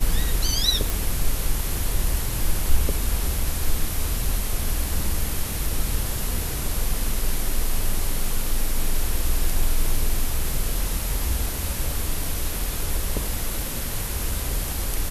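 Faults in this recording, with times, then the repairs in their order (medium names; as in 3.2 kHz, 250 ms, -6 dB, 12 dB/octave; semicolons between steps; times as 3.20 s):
0.90 s: pop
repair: de-click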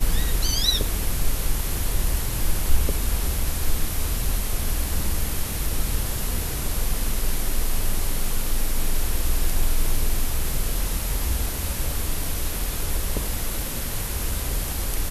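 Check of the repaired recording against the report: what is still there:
nothing left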